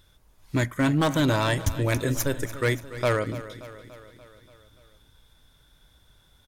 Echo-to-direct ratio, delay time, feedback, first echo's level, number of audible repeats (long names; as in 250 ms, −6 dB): −13.0 dB, 289 ms, 60%, −15.0 dB, 5